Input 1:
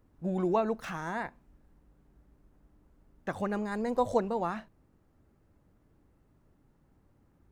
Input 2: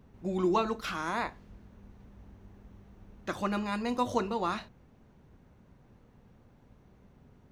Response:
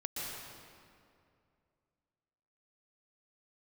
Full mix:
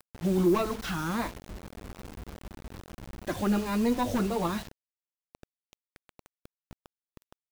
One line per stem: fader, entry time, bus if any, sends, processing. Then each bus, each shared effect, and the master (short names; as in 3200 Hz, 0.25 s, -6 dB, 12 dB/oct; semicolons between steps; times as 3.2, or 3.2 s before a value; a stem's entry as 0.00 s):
-3.0 dB, 0.00 s, no send, vibrato 1.5 Hz 35 cents; overloaded stage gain 26.5 dB
+1.5 dB, 1.8 ms, no send, soft clip -23.5 dBFS, distortion -15 dB; cascading phaser falling 1.6 Hz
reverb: off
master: low shelf 430 Hz +6 dB; bit-crush 7-bit